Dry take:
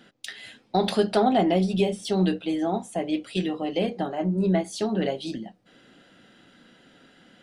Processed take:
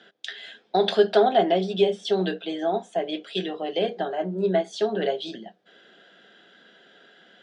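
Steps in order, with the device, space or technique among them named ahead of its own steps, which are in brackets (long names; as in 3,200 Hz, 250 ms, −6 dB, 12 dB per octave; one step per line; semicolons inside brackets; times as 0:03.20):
television speaker (loudspeaker in its box 180–7,100 Hz, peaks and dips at 270 Hz −9 dB, 410 Hz +9 dB, 670 Hz +8 dB, 1,600 Hz +10 dB, 3,400 Hz +10 dB)
level −3.5 dB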